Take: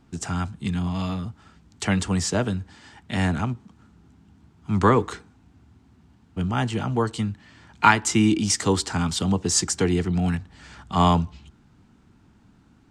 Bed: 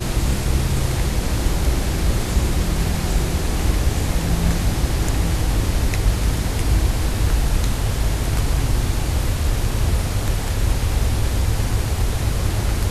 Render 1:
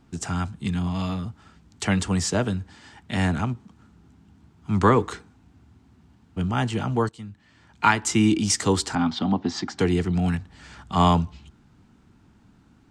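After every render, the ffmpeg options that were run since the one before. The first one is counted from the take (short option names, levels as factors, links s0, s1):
-filter_complex "[0:a]asettb=1/sr,asplit=3[s0][s1][s2];[s0]atrim=end=8.954[s3];[s1]atrim=start=8.95:end=9.79,asetpts=PTS-STARTPTS,afade=t=in:d=0.004:c=qsin,afade=t=out:st=0.836:d=0.004:c=qsin,highpass=150,equalizer=f=160:t=q:w=4:g=-4,equalizer=f=250:t=q:w=4:g=9,equalizer=f=460:t=q:w=4:g=-9,equalizer=f=760:t=q:w=4:g=7,equalizer=f=2700:t=q:w=4:g=-6,lowpass=f=4100:w=0.5412,lowpass=f=4100:w=1.3066[s4];[s2]atrim=start=9.786[s5];[s3][s4]acrossfade=d=0.004:c1=hsin:c2=qsin[s6];[s6][s5]acrossfade=d=0.004:c1=qsin:c2=hsin,asplit=2[s7][s8];[s7]atrim=end=7.09,asetpts=PTS-STARTPTS,afade=t=out:st=7.086:d=0.004:c=hsin:silence=0.141254[s9];[s8]atrim=start=7.09,asetpts=PTS-STARTPTS,afade=t=in:d=1.18:silence=0.141254[s10];[s9][s10]concat=n=2:v=0:a=1"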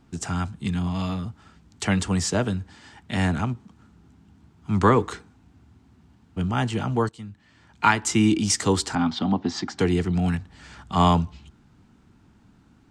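-af anull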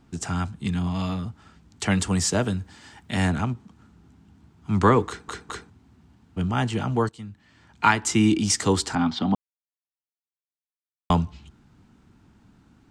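-filter_complex "[0:a]asettb=1/sr,asplit=3[s0][s1][s2];[s0]atrim=end=1.904[s3];[s1]atrim=start=1.9:end=3.3,asetpts=PTS-STARTPTS,afade=t=in:d=0.004:c=qsin,afade=t=out:st=1.396:d=0.004:c=qsin,highshelf=f=8400:g=8[s4];[s2]atrim=start=3.296[s5];[s3][s4]acrossfade=d=0.004:c1=hsin:c2=qsin[s6];[s6][s5]acrossfade=d=0.004:c1=qsin:c2=hsin,asplit=6[s7][s8][s9][s10][s11][s12];[s7]atrim=end=5.282[s13];[s8]atrim=start=5.068:end=5.282[s14];[s9]atrim=start=5.068:end=5.282[s15];[s10]atrim=start=5.698:end=9.35,asetpts=PTS-STARTPTS,afade=t=out:st=3.648:d=0.004:c=hsin[s16];[s11]atrim=start=9.35:end=11.1,asetpts=PTS-STARTPTS,volume=0[s17];[s12]atrim=start=11.1,asetpts=PTS-STARTPTS,afade=t=in:d=0.004:c=hsin[s18];[s13][s14]acrossfade=d=0.004:c1=hsin:c2=hsin[s19];[s19][s15]acrossfade=d=0.004:c1=hsin:c2=hsin[s20];[s16][s17][s18]concat=n=3:v=0:a=1[s21];[s20][s21]acrossfade=d=0.004:c1=hsin:c2=hsin"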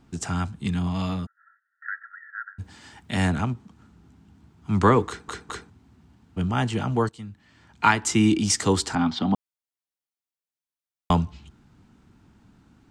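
-filter_complex "[0:a]asplit=3[s0][s1][s2];[s0]afade=t=out:st=1.25:d=0.02[s3];[s1]asuperpass=centerf=1600:order=20:qfactor=2.6,afade=t=in:st=1.25:d=0.02,afade=t=out:st=2.58:d=0.02[s4];[s2]afade=t=in:st=2.58:d=0.02[s5];[s3][s4][s5]amix=inputs=3:normalize=0"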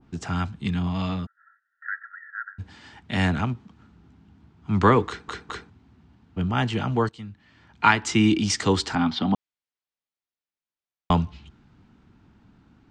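-af "lowpass=4400,adynamicequalizer=threshold=0.0158:dfrequency=1600:dqfactor=0.7:tfrequency=1600:tqfactor=0.7:attack=5:release=100:ratio=0.375:range=2:mode=boostabove:tftype=highshelf"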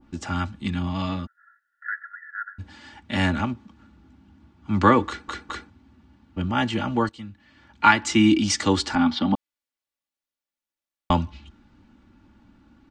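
-af "aecho=1:1:3.5:0.61"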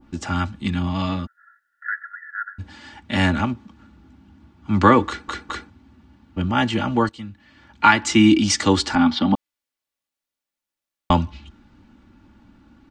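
-af "volume=1.5,alimiter=limit=0.891:level=0:latency=1"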